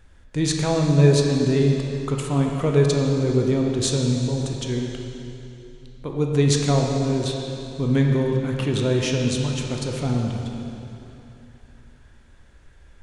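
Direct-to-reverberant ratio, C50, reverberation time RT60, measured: 0.5 dB, 1.5 dB, 3.0 s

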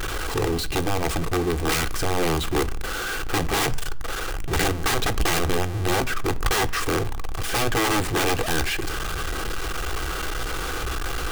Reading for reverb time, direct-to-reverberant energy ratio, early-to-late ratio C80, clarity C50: 0.60 s, 9.5 dB, 24.0 dB, 21.5 dB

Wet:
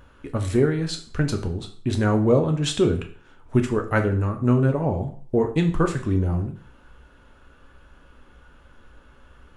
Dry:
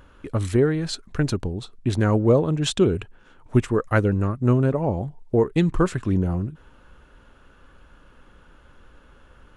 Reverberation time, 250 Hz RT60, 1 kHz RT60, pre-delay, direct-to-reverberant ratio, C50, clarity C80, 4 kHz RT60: 0.45 s, 0.45 s, 0.45 s, 4 ms, 4.0 dB, 11.0 dB, 15.5 dB, 0.45 s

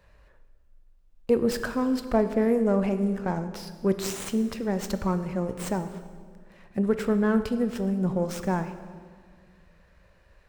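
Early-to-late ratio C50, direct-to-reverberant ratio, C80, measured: 11.0 dB, 9.5 dB, 12.0 dB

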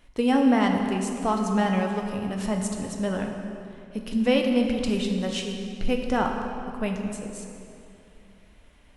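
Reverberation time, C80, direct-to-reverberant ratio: 2.7 s, 5.0 dB, 2.0 dB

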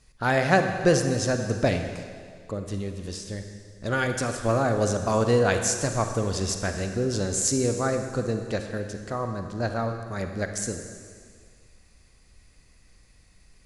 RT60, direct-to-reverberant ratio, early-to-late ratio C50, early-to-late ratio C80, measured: 1.9 s, 5.5 dB, 6.0 dB, 7.0 dB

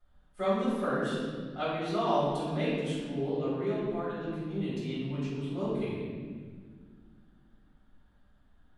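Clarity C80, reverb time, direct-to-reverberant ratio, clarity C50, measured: 0.0 dB, 1.7 s, -11.5 dB, -2.0 dB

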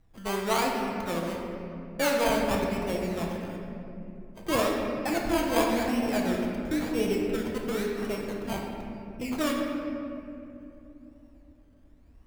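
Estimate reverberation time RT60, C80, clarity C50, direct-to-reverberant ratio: 2.9 s, 2.5 dB, 1.0 dB, -1.5 dB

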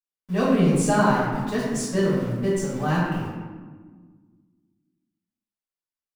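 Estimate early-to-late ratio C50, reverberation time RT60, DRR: -1.0 dB, 1.5 s, -13.0 dB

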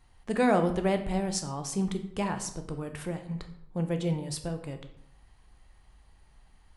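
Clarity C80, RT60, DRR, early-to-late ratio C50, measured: 14.0 dB, 0.75 s, 6.5 dB, 11.0 dB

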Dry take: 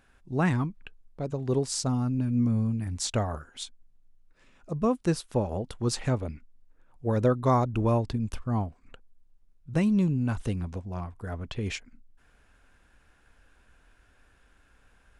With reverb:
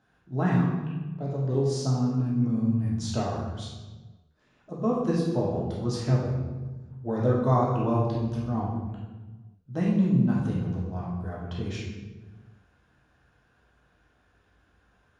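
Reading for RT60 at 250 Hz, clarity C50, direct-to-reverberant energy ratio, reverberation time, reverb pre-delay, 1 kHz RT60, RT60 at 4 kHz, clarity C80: 1.7 s, 1.0 dB, -5.0 dB, 1.3 s, 3 ms, 1.2 s, 0.90 s, 3.5 dB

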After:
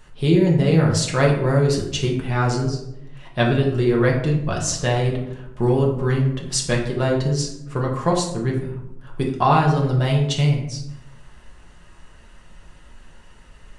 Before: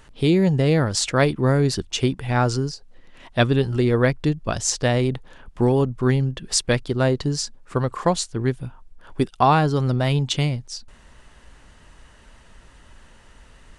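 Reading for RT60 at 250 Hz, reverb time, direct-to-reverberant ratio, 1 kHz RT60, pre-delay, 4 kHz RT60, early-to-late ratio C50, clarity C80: 1.0 s, 0.85 s, -2.5 dB, 0.70 s, 5 ms, 0.45 s, 5.5 dB, 8.5 dB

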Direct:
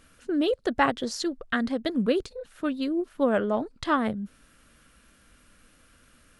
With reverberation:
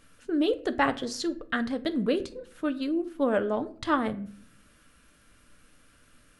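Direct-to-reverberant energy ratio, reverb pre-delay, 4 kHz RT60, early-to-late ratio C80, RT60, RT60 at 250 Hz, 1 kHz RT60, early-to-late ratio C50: 9.0 dB, 7 ms, 0.35 s, 21.0 dB, 0.50 s, 0.95 s, 0.45 s, 17.0 dB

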